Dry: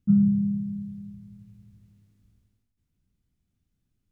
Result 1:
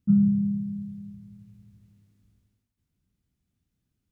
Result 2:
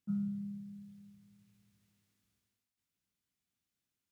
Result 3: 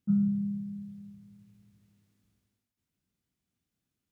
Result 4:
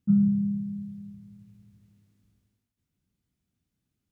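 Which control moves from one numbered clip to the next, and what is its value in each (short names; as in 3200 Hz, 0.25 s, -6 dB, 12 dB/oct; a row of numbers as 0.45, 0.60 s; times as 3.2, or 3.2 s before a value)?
HPF, cutoff: 55, 1300, 380, 140 Hz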